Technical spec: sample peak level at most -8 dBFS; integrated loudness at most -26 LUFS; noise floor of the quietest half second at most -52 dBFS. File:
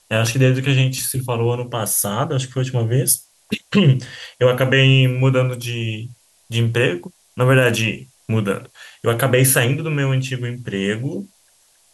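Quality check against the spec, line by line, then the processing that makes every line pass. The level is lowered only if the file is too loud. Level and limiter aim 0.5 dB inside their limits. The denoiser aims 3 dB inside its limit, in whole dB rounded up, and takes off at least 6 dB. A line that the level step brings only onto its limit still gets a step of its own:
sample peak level -3.5 dBFS: fail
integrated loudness -18.5 LUFS: fail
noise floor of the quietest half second -57 dBFS: OK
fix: gain -8 dB

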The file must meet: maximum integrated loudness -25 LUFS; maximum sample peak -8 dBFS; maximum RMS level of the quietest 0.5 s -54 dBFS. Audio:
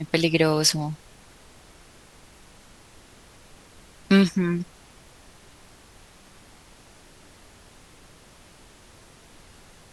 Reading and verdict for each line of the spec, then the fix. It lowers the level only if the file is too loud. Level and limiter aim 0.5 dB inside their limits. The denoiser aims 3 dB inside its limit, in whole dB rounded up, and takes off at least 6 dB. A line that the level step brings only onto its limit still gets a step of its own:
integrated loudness -22.0 LUFS: fail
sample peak -5.5 dBFS: fail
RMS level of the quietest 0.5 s -51 dBFS: fail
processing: gain -3.5 dB

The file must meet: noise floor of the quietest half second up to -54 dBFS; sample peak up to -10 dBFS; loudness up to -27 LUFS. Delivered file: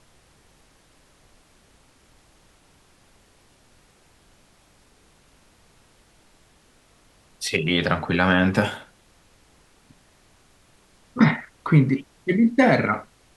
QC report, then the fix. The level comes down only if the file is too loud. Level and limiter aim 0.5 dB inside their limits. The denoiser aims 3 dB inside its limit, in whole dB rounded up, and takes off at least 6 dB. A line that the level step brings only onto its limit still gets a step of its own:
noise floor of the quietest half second -58 dBFS: OK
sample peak -3.5 dBFS: fail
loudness -21.0 LUFS: fail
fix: gain -6.5 dB; limiter -10.5 dBFS

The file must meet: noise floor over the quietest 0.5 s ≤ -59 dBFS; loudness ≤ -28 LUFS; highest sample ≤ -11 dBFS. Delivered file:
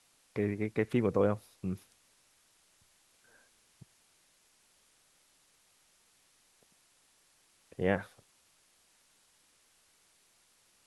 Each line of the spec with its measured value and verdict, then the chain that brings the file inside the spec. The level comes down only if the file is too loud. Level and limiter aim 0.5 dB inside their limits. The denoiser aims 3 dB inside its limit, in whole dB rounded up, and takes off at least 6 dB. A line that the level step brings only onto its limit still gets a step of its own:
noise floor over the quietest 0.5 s -69 dBFS: OK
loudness -33.0 LUFS: OK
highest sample -14.5 dBFS: OK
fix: none

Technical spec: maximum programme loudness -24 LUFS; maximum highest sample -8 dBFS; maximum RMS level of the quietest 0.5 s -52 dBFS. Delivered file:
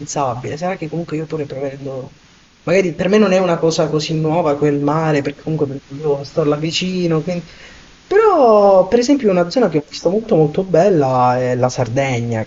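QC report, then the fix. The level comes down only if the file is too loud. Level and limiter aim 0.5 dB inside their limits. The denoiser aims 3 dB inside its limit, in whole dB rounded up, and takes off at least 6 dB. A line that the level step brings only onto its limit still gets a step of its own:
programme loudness -16.0 LUFS: fail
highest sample -2.0 dBFS: fail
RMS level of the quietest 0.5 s -48 dBFS: fail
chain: gain -8.5 dB

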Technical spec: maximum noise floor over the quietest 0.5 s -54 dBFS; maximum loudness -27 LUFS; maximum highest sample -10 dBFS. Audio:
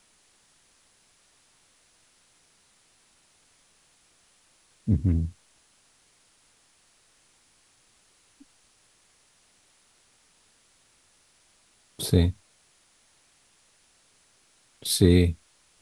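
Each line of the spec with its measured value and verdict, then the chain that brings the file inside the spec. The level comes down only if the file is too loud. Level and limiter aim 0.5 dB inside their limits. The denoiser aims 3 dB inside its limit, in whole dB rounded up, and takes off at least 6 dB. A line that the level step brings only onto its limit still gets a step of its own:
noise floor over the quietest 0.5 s -63 dBFS: OK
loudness -24.5 LUFS: fail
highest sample -4.5 dBFS: fail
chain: gain -3 dB; limiter -10.5 dBFS

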